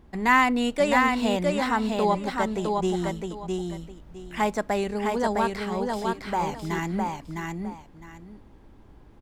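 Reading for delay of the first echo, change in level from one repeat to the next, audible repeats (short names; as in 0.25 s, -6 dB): 0.659 s, -12.5 dB, 2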